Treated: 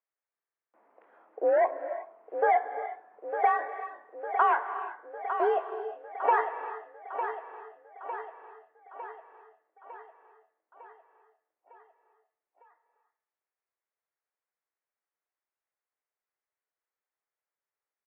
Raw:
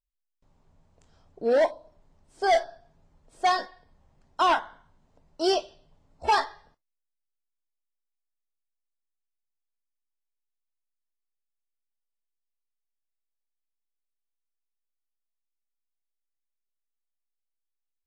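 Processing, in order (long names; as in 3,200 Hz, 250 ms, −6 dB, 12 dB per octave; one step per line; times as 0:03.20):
downward compressor 6 to 1, threshold −30 dBFS, peak gain reduction 11 dB
on a send: repeating echo 904 ms, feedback 58%, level −9 dB
on the sum: reverb whose tail is shaped and stops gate 400 ms rising, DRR 11 dB
single-sideband voice off tune +53 Hz 330–2,100 Hz
buffer that repeats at 0:00.32, samples 2,048, times 8
level +8 dB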